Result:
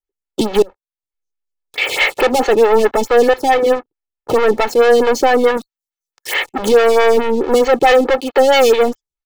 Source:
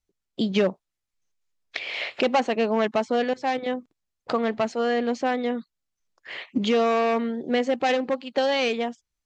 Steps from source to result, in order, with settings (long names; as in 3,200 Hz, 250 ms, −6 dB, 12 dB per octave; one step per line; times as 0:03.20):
0:03.54–0:04.43: Butterworth low-pass 3,300 Hz
leveller curve on the samples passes 5
comb filter 2.3 ms, depth 57%
0:00.62–0:01.78: downward compressor 12 to 1, threshold −36 dBFS, peak gain reduction 25.5 dB
0:05.57–0:06.34: spectral tilt +3 dB per octave
phaser with staggered stages 4.6 Hz
level +2.5 dB